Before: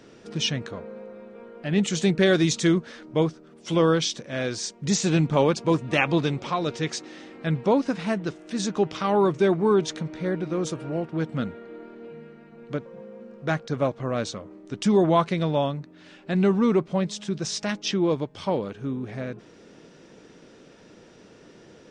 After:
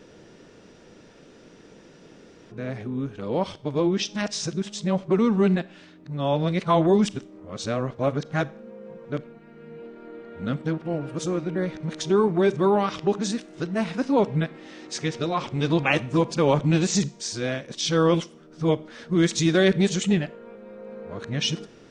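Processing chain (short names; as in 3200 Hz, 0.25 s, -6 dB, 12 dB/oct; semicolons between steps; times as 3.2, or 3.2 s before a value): whole clip reversed; low shelf 64 Hz +6.5 dB; Schroeder reverb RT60 0.46 s, combs from 28 ms, DRR 18.5 dB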